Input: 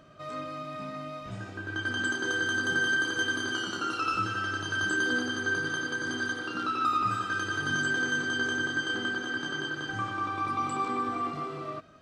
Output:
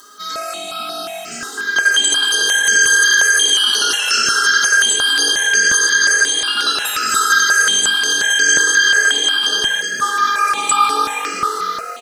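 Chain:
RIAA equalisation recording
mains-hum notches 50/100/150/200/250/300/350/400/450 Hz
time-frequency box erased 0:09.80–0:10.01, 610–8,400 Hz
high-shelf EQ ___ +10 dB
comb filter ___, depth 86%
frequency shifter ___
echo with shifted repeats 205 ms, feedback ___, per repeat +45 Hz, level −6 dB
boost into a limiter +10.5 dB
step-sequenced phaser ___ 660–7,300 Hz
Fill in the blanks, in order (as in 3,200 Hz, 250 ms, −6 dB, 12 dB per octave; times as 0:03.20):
3,100 Hz, 5.1 ms, +41 Hz, 41%, 5.6 Hz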